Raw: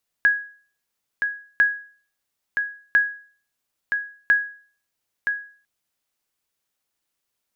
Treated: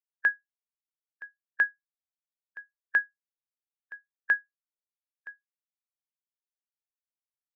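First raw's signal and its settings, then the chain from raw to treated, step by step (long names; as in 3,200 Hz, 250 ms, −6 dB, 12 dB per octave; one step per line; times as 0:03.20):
ping with an echo 1,660 Hz, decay 0.44 s, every 1.35 s, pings 4, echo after 0.97 s, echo −6.5 dB −9.5 dBFS
spectral dynamics exaggerated over time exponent 3
high-pass filter 660 Hz 12 dB per octave
spectral tilt −4 dB per octave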